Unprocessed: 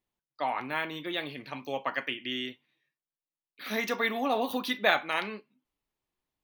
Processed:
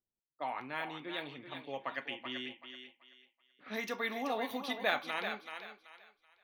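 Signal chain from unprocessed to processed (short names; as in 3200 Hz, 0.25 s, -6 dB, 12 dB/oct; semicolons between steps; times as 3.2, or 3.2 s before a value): low-pass opened by the level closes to 590 Hz, open at -28 dBFS; thinning echo 0.381 s, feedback 29%, high-pass 440 Hz, level -7 dB; gain -7.5 dB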